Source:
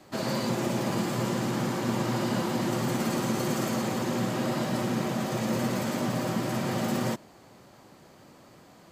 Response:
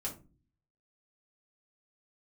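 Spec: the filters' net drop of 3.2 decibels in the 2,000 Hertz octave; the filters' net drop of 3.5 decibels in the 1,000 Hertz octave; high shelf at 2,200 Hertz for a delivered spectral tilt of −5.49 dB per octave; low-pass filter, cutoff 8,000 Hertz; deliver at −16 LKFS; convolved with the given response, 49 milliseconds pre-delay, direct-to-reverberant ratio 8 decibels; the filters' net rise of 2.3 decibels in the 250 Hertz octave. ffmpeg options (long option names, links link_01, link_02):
-filter_complex "[0:a]lowpass=8000,equalizer=frequency=250:width_type=o:gain=3,equalizer=frequency=1000:width_type=o:gain=-4.5,equalizer=frequency=2000:width_type=o:gain=-5,highshelf=frequency=2200:gain=4.5,asplit=2[link_01][link_02];[1:a]atrim=start_sample=2205,adelay=49[link_03];[link_02][link_03]afir=irnorm=-1:irlink=0,volume=-8.5dB[link_04];[link_01][link_04]amix=inputs=2:normalize=0,volume=10.5dB"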